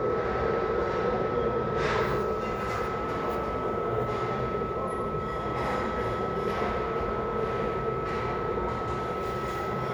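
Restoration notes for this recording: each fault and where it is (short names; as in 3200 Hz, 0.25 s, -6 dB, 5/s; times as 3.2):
tone 1300 Hz -34 dBFS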